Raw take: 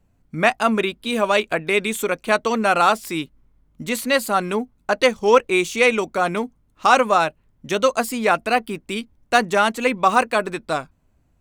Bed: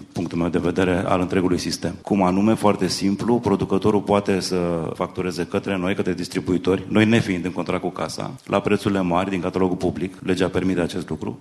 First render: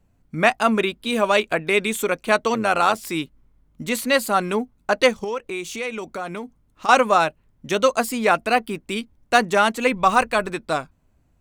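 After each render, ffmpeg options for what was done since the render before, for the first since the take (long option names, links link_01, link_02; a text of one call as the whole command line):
ffmpeg -i in.wav -filter_complex "[0:a]asettb=1/sr,asplit=3[link_01][link_02][link_03];[link_01]atrim=end=2.544[link_04];[link_02]atrim=start=2.54:end=2.98,asetpts=PTS-STARTPTS,afade=type=in:duration=0.004:curve=qsin,afade=type=out:start_time=0.436:duration=0.004:curve=qsin,tremolo=f=98:d=0.519[link_05];[link_03]atrim=start=2.976[link_06];[link_04][link_05]acrossfade=duration=0.004:curve1=hsin:curve2=qsin[link_07];[link_07][link_06]acrossfade=duration=0.004:curve1=qsin:curve2=hsin,asettb=1/sr,asplit=3[link_08][link_09][link_10];[link_08]atrim=end=5.244[link_11];[link_09]atrim=start=5.24:end=6.89,asetpts=PTS-STARTPTS,afade=type=in:duration=0.004:curve=qsin,afade=type=out:start_time=1.646:duration=0.004:curve=qsin,acompressor=threshold=-30dB:ratio=2.5:attack=3.2:release=140:knee=1:detection=peak[link_12];[link_10]atrim=start=6.886[link_13];[link_11][link_12]acrossfade=duration=0.004:curve1=hsin:curve2=qsin[link_14];[link_14][link_13]acrossfade=duration=0.004:curve1=qsin:curve2=hsin,asplit=3[link_15][link_16][link_17];[link_15]afade=type=out:start_time=9.92:duration=0.02[link_18];[link_16]asubboost=boost=4.5:cutoff=120,afade=type=in:start_time=9.92:duration=0.02,afade=type=out:start_time=10.48:duration=0.02[link_19];[link_17]afade=type=in:start_time=10.48:duration=0.02[link_20];[link_18][link_19][link_20]amix=inputs=3:normalize=0" out.wav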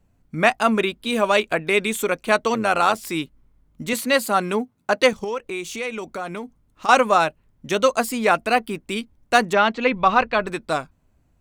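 ffmpeg -i in.wav -filter_complex "[0:a]asettb=1/sr,asplit=3[link_01][link_02][link_03];[link_01]atrim=end=3.934[link_04];[link_02]atrim=start=3.93:end=5.13,asetpts=PTS-STARTPTS,afade=type=in:duration=0.004:curve=qsin,afade=type=out:start_time=1.196:duration=0.004:curve=qsin,highpass=frequency=94:width=0.5412,highpass=frequency=94:width=1.3066[link_05];[link_03]atrim=start=5.126[link_06];[link_04][link_05]acrossfade=duration=0.004:curve1=hsin:curve2=qsin[link_07];[link_07][link_06]acrossfade=duration=0.004:curve1=qsin:curve2=hsin,asettb=1/sr,asplit=3[link_08][link_09][link_10];[link_08]atrim=end=9.534[link_11];[link_09]atrim=start=9.53:end=10.47,asetpts=PTS-STARTPTS,afade=type=in:duration=0.004:curve=qsin,afade=type=out:start_time=0.936:duration=0.004:curve=qsin,lowpass=frequency=4600:width=0.5412,lowpass=frequency=4600:width=1.3066[link_12];[link_10]atrim=start=10.466[link_13];[link_11][link_12]acrossfade=duration=0.004:curve1=hsin:curve2=qsin[link_14];[link_14][link_13]acrossfade=duration=0.004:curve1=qsin:curve2=hsin" out.wav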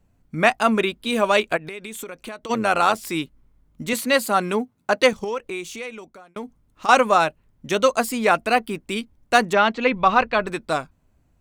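ffmpeg -i in.wav -filter_complex "[0:a]asplit=3[link_01][link_02][link_03];[link_01]afade=type=out:start_time=1.56:duration=0.02[link_04];[link_02]acompressor=threshold=-30dB:ratio=12:attack=3.2:release=140:knee=1:detection=peak,afade=type=in:start_time=1.56:duration=0.02,afade=type=out:start_time=2.49:duration=0.02[link_05];[link_03]afade=type=in:start_time=2.49:duration=0.02[link_06];[link_04][link_05][link_06]amix=inputs=3:normalize=0,asplit=2[link_07][link_08];[link_07]atrim=end=6.36,asetpts=PTS-STARTPTS,afade=type=out:start_time=5.45:duration=0.91[link_09];[link_08]atrim=start=6.36,asetpts=PTS-STARTPTS,afade=type=in:duration=0.004:curve=hsin[link_10];[link_09][link_10]concat=n=2:v=0:a=1" out.wav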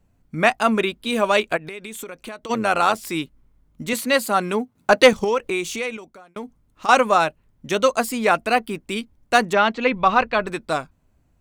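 ffmpeg -i in.wav -filter_complex "[0:a]asettb=1/sr,asplit=3[link_01][link_02][link_03];[link_01]atrim=end=4.754[link_04];[link_02]atrim=start=4.75:end=5.97,asetpts=PTS-STARTPTS,afade=type=in:duration=0.004:curve=qsin,afade=type=out:start_time=1.216:duration=0.004:curve=qsin,acontrast=59[link_05];[link_03]atrim=start=5.966[link_06];[link_04][link_05]acrossfade=duration=0.004:curve1=hsin:curve2=qsin[link_07];[link_07][link_06]acrossfade=duration=0.004:curve1=qsin:curve2=hsin" out.wav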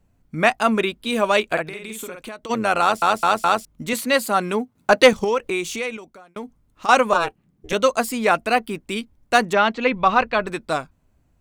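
ffmpeg -i in.wav -filter_complex "[0:a]asettb=1/sr,asplit=3[link_01][link_02][link_03];[link_01]atrim=end=1.524[link_04];[link_02]atrim=start=1.52:end=2.22,asetpts=PTS-STARTPTS,afade=type=in:duration=0.004:curve=qsin,afade=type=out:start_time=0.696:duration=0.004:curve=qsin,asplit=2[link_05][link_06];[link_06]adelay=50,volume=-4dB[link_07];[link_05][link_07]amix=inputs=2:normalize=0,atrim=end_sample=30870[link_08];[link_03]atrim=start=2.216[link_09];[link_04][link_08]acrossfade=duration=0.004:curve1=hsin:curve2=qsin[link_10];[link_10][link_09]acrossfade=duration=0.004:curve1=qsin:curve2=hsin,asettb=1/sr,asplit=3[link_11][link_12][link_13];[link_11]atrim=end=7.134[link_14];[link_12]atrim=start=7.13:end=7.73,asetpts=PTS-STARTPTS,afade=type=in:duration=0.004:curve=qsin,afade=type=out:start_time=0.596:duration=0.004:curve=qsin,aeval=exprs='val(0)*sin(2*PI*170*n/s)':channel_layout=same[link_15];[link_13]atrim=start=7.726[link_16];[link_14][link_15]acrossfade=duration=0.004:curve1=hsin:curve2=qsin[link_17];[link_17][link_16]acrossfade=duration=0.004:curve1=qsin:curve2=hsin,asplit=5[link_18][link_19][link_20][link_21][link_22];[link_18]atrim=end=3.022[link_23];[link_19]atrim=start=2.808:end=3.022[link_24];[link_20]atrim=start=2.808:end=3.022[link_25];[link_21]atrim=start=2.808:end=3.022[link_26];[link_22]atrim=start=3.648[link_27];[link_23][link_24]acrossfade=duration=0.004:curve1=hsin:curve2=hsin[link_28];[link_28][link_25]acrossfade=duration=0.004:curve1=hsin:curve2=hsin[link_29];[link_29][link_26]acrossfade=duration=0.004:curve1=hsin:curve2=hsin[link_30];[link_30][link_27]acrossfade=duration=0.004:curve1=hsin:curve2=hsin" out.wav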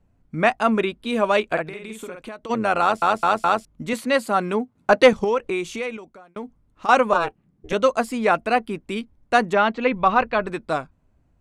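ffmpeg -i in.wav -af "lowpass=frequency=12000:width=0.5412,lowpass=frequency=12000:width=1.3066,highshelf=frequency=3100:gain=-9.5" out.wav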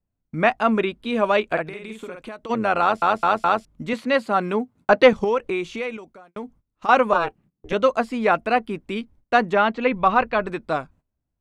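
ffmpeg -i in.wav -filter_complex "[0:a]acrossover=split=4900[link_01][link_02];[link_02]acompressor=threshold=-56dB:ratio=4:attack=1:release=60[link_03];[link_01][link_03]amix=inputs=2:normalize=0,agate=range=-18dB:threshold=-49dB:ratio=16:detection=peak" out.wav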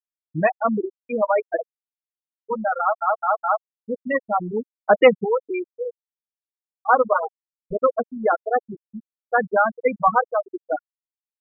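ffmpeg -i in.wav -af "aecho=1:1:6.3:0.34,afftfilt=real='re*gte(hypot(re,im),0.398)':imag='im*gte(hypot(re,im),0.398)':win_size=1024:overlap=0.75" out.wav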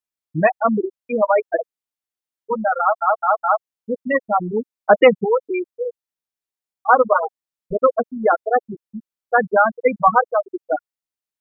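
ffmpeg -i in.wav -af "volume=3.5dB,alimiter=limit=-1dB:level=0:latency=1" out.wav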